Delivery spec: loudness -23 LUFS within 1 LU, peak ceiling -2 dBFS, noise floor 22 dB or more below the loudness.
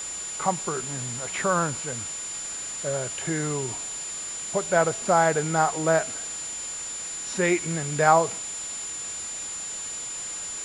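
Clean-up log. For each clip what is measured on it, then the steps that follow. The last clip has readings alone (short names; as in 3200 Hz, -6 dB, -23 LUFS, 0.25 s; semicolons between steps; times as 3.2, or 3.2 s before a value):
steady tone 7100 Hz; tone level -32 dBFS; noise floor -34 dBFS; noise floor target -49 dBFS; loudness -26.5 LUFS; peak -5.5 dBFS; loudness target -23.0 LUFS
-> notch 7100 Hz, Q 30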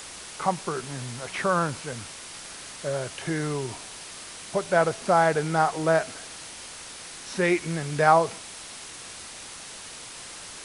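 steady tone none; noise floor -42 dBFS; noise floor target -48 dBFS
-> denoiser 6 dB, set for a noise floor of -42 dBFS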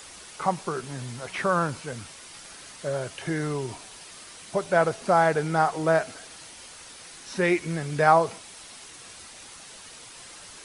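noise floor -46 dBFS; noise floor target -48 dBFS
-> denoiser 6 dB, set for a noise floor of -46 dBFS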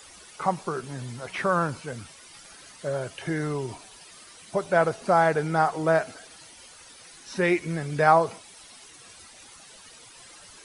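noise floor -49 dBFS; loudness -25.5 LUFS; peak -6.0 dBFS; loudness target -23.0 LUFS
-> gain +2.5 dB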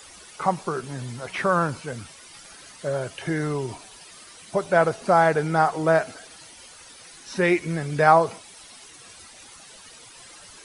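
loudness -23.5 LUFS; peak -3.5 dBFS; noise floor -47 dBFS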